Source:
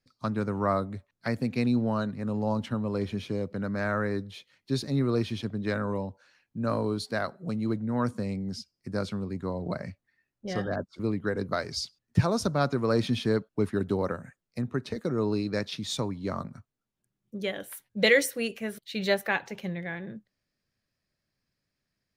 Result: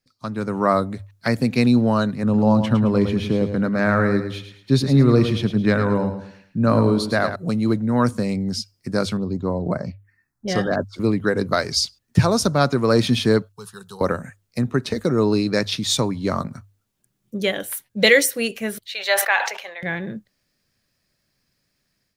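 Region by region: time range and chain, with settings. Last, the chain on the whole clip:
2.23–7.36 tone controls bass +4 dB, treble -7 dB + feedback echo 0.108 s, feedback 34%, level -9 dB
9.17–10.48 high shelf 3200 Hz -6.5 dB + envelope phaser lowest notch 460 Hz, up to 3700 Hz, full sweep at -27.5 dBFS
13.52–14.01 passive tone stack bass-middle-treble 10-0-10 + fixed phaser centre 420 Hz, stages 8
18.86–19.83 HPF 650 Hz 24 dB/oct + high shelf 5500 Hz -11.5 dB + sustainer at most 80 dB/s
whole clip: high shelf 4200 Hz +6 dB; notches 50/100 Hz; AGC gain up to 9.5 dB

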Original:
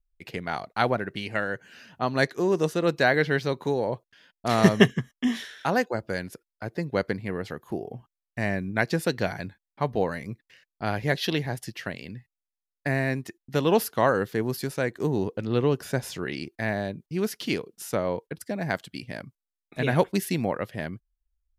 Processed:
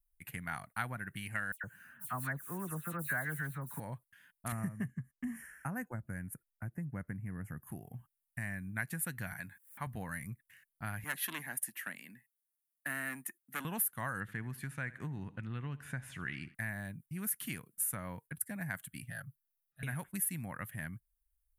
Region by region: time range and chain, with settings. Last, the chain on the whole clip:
1.52–3.8 block floating point 5-bit + resonant high shelf 1800 Hz -7.5 dB, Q 1.5 + dispersion lows, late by 0.117 s, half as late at 2800 Hz
4.52–7.67 Butterworth band-stop 3800 Hz, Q 1.3 + tilt shelf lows +6.5 dB, about 720 Hz
9.33–9.87 HPF 290 Hz 6 dB/oct + upward compressor, threshold -36 dBFS
11.04–13.65 HPF 230 Hz 24 dB/oct + core saturation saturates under 2200 Hz
14.2–16.55 LPF 4300 Hz + bell 2600 Hz +3 dB 1.7 oct + feedback echo 77 ms, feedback 50%, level -20 dB
19.1–19.83 auto swell 0.48 s + fixed phaser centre 1500 Hz, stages 8 + comb 7.3 ms, depth 76%
whole clip: EQ curve 140 Hz 0 dB, 260 Hz -11 dB, 420 Hz -26 dB, 1700 Hz -7 dB, 5000 Hz -25 dB, 9700 Hz +6 dB; compressor 4:1, threshold -36 dBFS; low shelf 320 Hz -10 dB; gain +5 dB

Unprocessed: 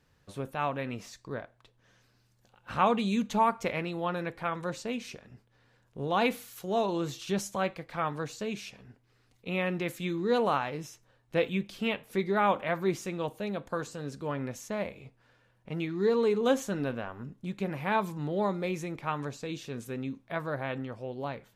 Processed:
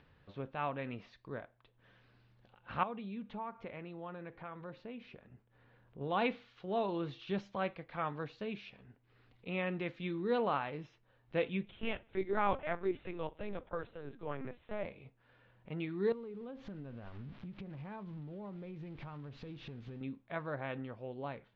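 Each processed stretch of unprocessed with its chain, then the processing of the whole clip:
2.83–6.01 compressor 2:1, threshold -40 dBFS + high shelf 3200 Hz -9.5 dB
11.65–14.85 steep high-pass 180 Hz 96 dB/oct + LPC vocoder at 8 kHz pitch kept
16.12–20.01 switching spikes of -24.5 dBFS + RIAA curve playback + compressor 16:1, threshold -36 dBFS
whole clip: upward compressor, threshold -50 dBFS; inverse Chebyshev low-pass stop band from 8500 Hz, stop band 50 dB; gain -6 dB

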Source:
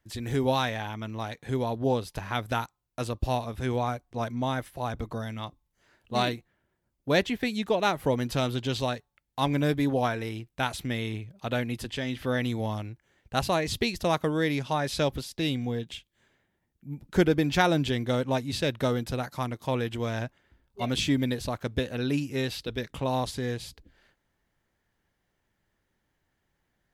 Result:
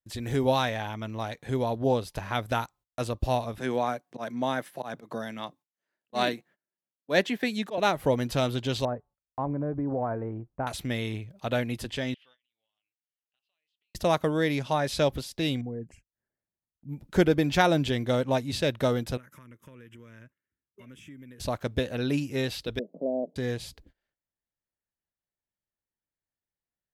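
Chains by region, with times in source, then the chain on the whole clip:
3.58–7.78 bell 1700 Hz +4 dB 0.29 oct + auto swell 0.116 s + HPF 160 Hz 24 dB/oct
8.85–10.67 LPF 1200 Hz 24 dB/oct + compressor, threshold -26 dBFS
12.14–13.95 band-pass 2900 Hz, Q 5.7 + compressor 8:1, threshold -52 dBFS + flange 1.3 Hz, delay 6.4 ms, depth 1.2 ms, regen +65%
15.61–16.89 formant sharpening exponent 1.5 + compressor 3:1, threshold -33 dBFS + Butterworth band-stop 3500 Hz, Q 0.73
19.17–21.4 HPF 110 Hz + compressor 4:1, threshold -46 dBFS + fixed phaser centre 1800 Hz, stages 4
22.79–23.36 switching spikes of -32 dBFS + Chebyshev band-pass 180–650 Hz, order 4
whole clip: gate -55 dBFS, range -23 dB; bell 600 Hz +3.5 dB 0.53 oct

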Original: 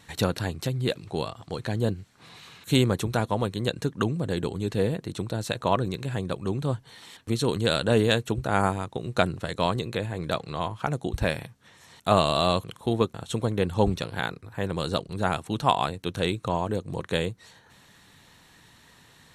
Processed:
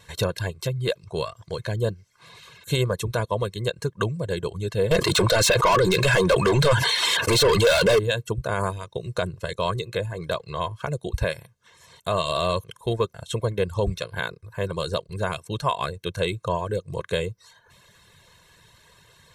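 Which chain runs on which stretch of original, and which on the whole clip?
4.91–7.99 overdrive pedal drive 34 dB, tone 5100 Hz, clips at -7.5 dBFS + sustainer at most 40 dB/s
whole clip: reverb removal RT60 0.58 s; comb 1.9 ms, depth 75%; limiter -12 dBFS

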